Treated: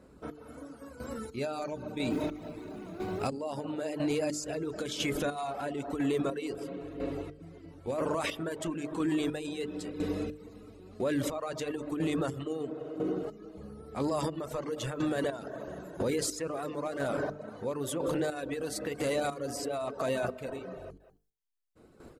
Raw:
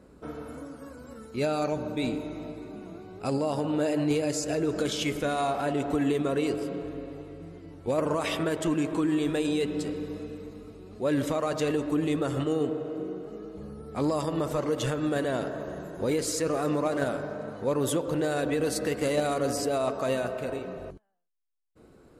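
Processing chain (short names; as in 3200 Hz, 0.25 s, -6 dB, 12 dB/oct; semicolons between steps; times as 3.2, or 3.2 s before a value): 2.1–3.27 G.711 law mismatch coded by mu; AGC gain up to 8.5 dB; echo 0.195 s -22 dB; compressor 2:1, threshold -22 dBFS, peak gain reduction 5.5 dB; chopper 1 Hz, depth 65%, duty 30%; reverb removal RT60 0.56 s; notches 50/100/150/200/250/300/350/400/450 Hz; limiter -21 dBFS, peak gain reduction 9 dB; gain -1.5 dB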